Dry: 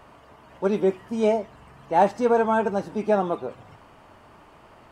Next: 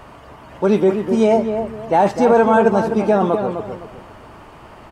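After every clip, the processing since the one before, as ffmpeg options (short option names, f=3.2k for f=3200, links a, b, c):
-filter_complex "[0:a]lowshelf=f=130:g=4,alimiter=limit=-15dB:level=0:latency=1:release=15,asplit=2[a][b];[b]adelay=254,lowpass=f=1.6k:p=1,volume=-7dB,asplit=2[c][d];[d]adelay=254,lowpass=f=1.6k:p=1,volume=0.31,asplit=2[e][f];[f]adelay=254,lowpass=f=1.6k:p=1,volume=0.31,asplit=2[g][h];[h]adelay=254,lowpass=f=1.6k:p=1,volume=0.31[i];[a][c][e][g][i]amix=inputs=5:normalize=0,volume=9dB"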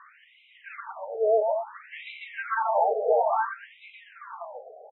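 -filter_complex "[0:a]aecho=1:1:142|854:0.596|0.631,asplit=2[a][b];[b]highpass=f=720:p=1,volume=11dB,asoftclip=type=tanh:threshold=-0.5dB[c];[a][c]amix=inputs=2:normalize=0,lowpass=f=3.2k:p=1,volume=-6dB,afftfilt=real='re*between(b*sr/1024,550*pow(2900/550,0.5+0.5*sin(2*PI*0.58*pts/sr))/1.41,550*pow(2900/550,0.5+0.5*sin(2*PI*0.58*pts/sr))*1.41)':imag='im*between(b*sr/1024,550*pow(2900/550,0.5+0.5*sin(2*PI*0.58*pts/sr))/1.41,550*pow(2900/550,0.5+0.5*sin(2*PI*0.58*pts/sr))*1.41)':win_size=1024:overlap=0.75,volume=-9dB"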